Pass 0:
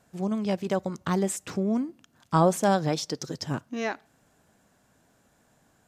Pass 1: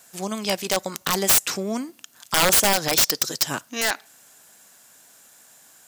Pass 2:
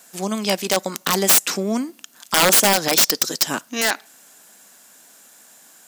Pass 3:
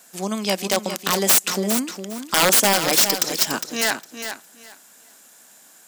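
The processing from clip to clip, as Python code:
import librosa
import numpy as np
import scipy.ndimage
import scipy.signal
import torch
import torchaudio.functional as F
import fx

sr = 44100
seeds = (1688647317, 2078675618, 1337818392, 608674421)

y1 = fx.tilt_eq(x, sr, slope=4.5)
y1 = (np.mod(10.0 ** (17.0 / 20.0) * y1 + 1.0, 2.0) - 1.0) / 10.0 ** (17.0 / 20.0)
y1 = y1 * librosa.db_to_amplitude(7.0)
y2 = fx.low_shelf_res(y1, sr, hz=140.0, db=-11.5, q=1.5)
y2 = y2 * librosa.db_to_amplitude(3.0)
y3 = fx.echo_feedback(y2, sr, ms=408, feedback_pct=19, wet_db=-9.0)
y3 = y3 * librosa.db_to_amplitude(-1.5)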